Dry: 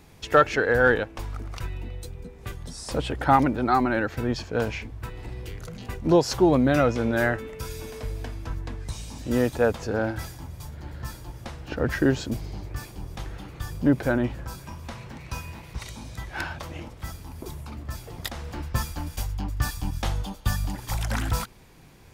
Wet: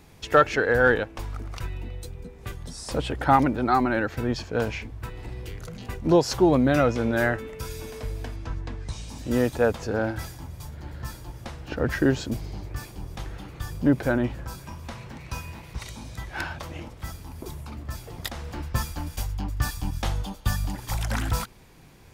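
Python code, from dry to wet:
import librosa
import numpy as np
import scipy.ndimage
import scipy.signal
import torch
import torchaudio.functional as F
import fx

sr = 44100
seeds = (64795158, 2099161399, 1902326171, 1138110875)

y = fx.lowpass(x, sr, hz=7200.0, slope=12, at=(8.36, 9.09))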